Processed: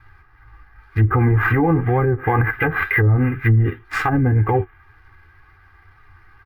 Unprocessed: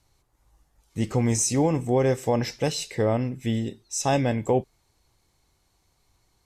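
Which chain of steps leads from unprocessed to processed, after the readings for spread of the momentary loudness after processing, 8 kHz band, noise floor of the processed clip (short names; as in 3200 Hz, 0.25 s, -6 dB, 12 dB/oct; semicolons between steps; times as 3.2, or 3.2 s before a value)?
6 LU, under -20 dB, -51 dBFS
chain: median filter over 15 samples; EQ curve 100 Hz 0 dB, 600 Hz -15 dB, 1600 Hz +15 dB, 2500 Hz +6 dB, 6500 Hz -26 dB, 9800 Hz +4 dB; flange 2 Hz, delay 8.8 ms, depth 3.5 ms, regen +36%; low shelf 100 Hz -3.5 dB; treble ducked by the level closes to 310 Hz, closed at -26.5 dBFS; notch 4200 Hz, Q 5.5; comb 2.5 ms, depth 80%; maximiser +29 dB; decimation joined by straight lines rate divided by 3×; gain -7.5 dB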